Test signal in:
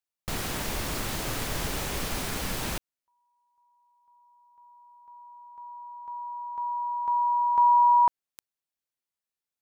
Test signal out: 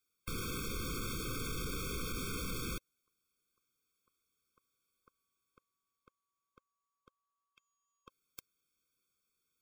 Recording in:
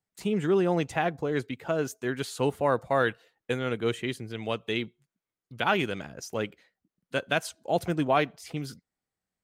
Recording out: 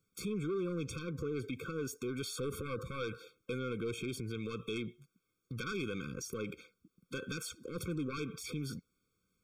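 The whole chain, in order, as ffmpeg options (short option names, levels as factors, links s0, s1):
-af "aeval=exprs='0.266*sin(PI/2*2.51*val(0)/0.266)':c=same,acompressor=threshold=0.0141:ratio=4:attack=1.9:release=35:knee=1:detection=peak,afftfilt=real='re*eq(mod(floor(b*sr/1024/530),2),0)':imag='im*eq(mod(floor(b*sr/1024/530),2),0)':win_size=1024:overlap=0.75,volume=0.841"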